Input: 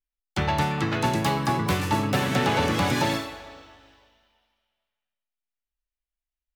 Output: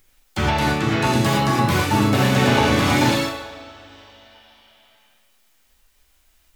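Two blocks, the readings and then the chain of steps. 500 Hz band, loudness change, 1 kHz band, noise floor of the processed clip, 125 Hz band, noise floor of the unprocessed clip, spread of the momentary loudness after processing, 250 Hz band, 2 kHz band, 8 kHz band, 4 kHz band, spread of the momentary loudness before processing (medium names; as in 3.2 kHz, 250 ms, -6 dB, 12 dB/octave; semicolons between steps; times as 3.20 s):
+6.0 dB, +6.0 dB, +4.5 dB, -60 dBFS, +6.5 dB, under -85 dBFS, 10 LU, +7.0 dB, +6.5 dB, +6.5 dB, +6.5 dB, 7 LU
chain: upward compressor, threshold -42 dBFS; gated-style reverb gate 140 ms flat, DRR -5.5 dB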